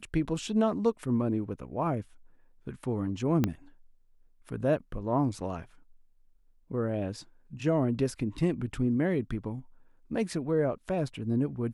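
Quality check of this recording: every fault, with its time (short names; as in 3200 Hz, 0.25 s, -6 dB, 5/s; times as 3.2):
3.44 pop -13 dBFS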